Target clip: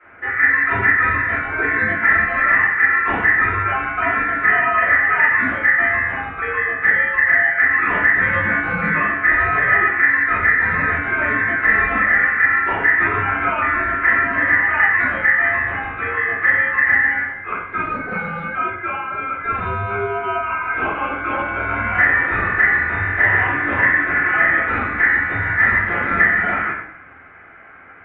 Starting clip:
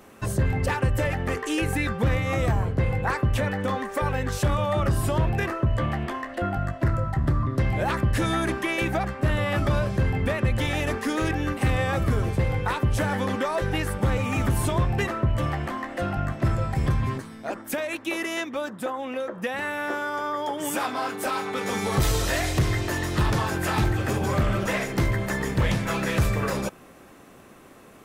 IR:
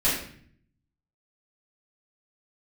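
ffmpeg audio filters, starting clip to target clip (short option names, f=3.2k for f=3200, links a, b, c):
-filter_complex "[0:a]aeval=exprs='val(0)*sin(2*PI*2000*n/s)':c=same[a];[1:a]atrim=start_sample=2205,asetrate=36162,aresample=44100[b];[a][b]afir=irnorm=-1:irlink=0,highpass=f=220:t=q:w=0.5412,highpass=f=220:t=q:w=1.307,lowpass=f=2.1k:t=q:w=0.5176,lowpass=f=2.1k:t=q:w=0.7071,lowpass=f=2.1k:t=q:w=1.932,afreqshift=-140,volume=-3dB"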